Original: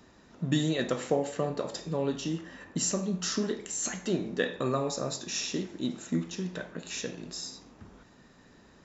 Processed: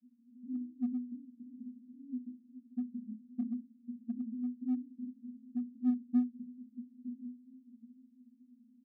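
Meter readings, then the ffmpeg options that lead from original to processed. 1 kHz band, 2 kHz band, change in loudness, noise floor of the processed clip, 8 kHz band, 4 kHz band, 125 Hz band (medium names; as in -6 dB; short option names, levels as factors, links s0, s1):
under -20 dB, under -35 dB, -7.5 dB, -66 dBFS, no reading, under -40 dB, under -25 dB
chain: -filter_complex "[0:a]asuperpass=centerf=240:order=8:qfactor=5.9,asplit=2[s0][s1];[s1]adelay=16,volume=0.251[s2];[s0][s2]amix=inputs=2:normalize=0,asplit=2[s3][s4];[s4]volume=56.2,asoftclip=hard,volume=0.0178,volume=0.316[s5];[s3][s5]amix=inputs=2:normalize=0,volume=1.12"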